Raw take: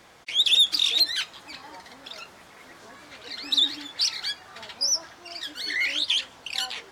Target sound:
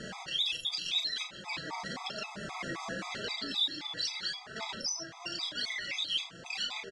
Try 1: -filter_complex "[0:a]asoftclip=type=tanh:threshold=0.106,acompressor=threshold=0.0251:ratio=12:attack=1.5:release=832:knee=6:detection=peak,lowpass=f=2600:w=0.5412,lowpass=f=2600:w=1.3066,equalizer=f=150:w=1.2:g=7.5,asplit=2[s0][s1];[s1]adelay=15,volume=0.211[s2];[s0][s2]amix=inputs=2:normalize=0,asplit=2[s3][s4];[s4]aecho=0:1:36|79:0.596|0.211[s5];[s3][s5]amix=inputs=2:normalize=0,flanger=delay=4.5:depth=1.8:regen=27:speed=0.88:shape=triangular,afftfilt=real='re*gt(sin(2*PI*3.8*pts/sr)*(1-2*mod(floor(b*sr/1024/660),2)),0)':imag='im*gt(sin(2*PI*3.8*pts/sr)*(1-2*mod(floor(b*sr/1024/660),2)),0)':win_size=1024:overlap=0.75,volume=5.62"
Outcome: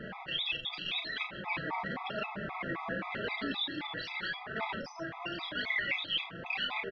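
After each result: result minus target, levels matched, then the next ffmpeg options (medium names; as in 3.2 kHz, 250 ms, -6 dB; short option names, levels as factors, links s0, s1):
compression: peak gain reduction -7 dB; 2 kHz band +5.5 dB
-filter_complex "[0:a]asoftclip=type=tanh:threshold=0.106,acompressor=threshold=0.0106:ratio=12:attack=1.5:release=832:knee=6:detection=peak,lowpass=f=2600:w=0.5412,lowpass=f=2600:w=1.3066,equalizer=f=150:w=1.2:g=7.5,asplit=2[s0][s1];[s1]adelay=15,volume=0.211[s2];[s0][s2]amix=inputs=2:normalize=0,asplit=2[s3][s4];[s4]aecho=0:1:36|79:0.596|0.211[s5];[s3][s5]amix=inputs=2:normalize=0,flanger=delay=4.5:depth=1.8:regen=27:speed=0.88:shape=triangular,afftfilt=real='re*gt(sin(2*PI*3.8*pts/sr)*(1-2*mod(floor(b*sr/1024/660),2)),0)':imag='im*gt(sin(2*PI*3.8*pts/sr)*(1-2*mod(floor(b*sr/1024/660),2)),0)':win_size=1024:overlap=0.75,volume=5.62"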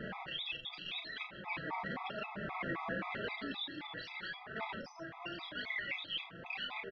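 2 kHz band +6.0 dB
-filter_complex "[0:a]asoftclip=type=tanh:threshold=0.106,acompressor=threshold=0.0106:ratio=12:attack=1.5:release=832:knee=6:detection=peak,lowpass=f=7700:w=0.5412,lowpass=f=7700:w=1.3066,equalizer=f=150:w=1.2:g=7.5,asplit=2[s0][s1];[s1]adelay=15,volume=0.211[s2];[s0][s2]amix=inputs=2:normalize=0,asplit=2[s3][s4];[s4]aecho=0:1:36|79:0.596|0.211[s5];[s3][s5]amix=inputs=2:normalize=0,flanger=delay=4.5:depth=1.8:regen=27:speed=0.88:shape=triangular,afftfilt=real='re*gt(sin(2*PI*3.8*pts/sr)*(1-2*mod(floor(b*sr/1024/660),2)),0)':imag='im*gt(sin(2*PI*3.8*pts/sr)*(1-2*mod(floor(b*sr/1024/660),2)),0)':win_size=1024:overlap=0.75,volume=5.62"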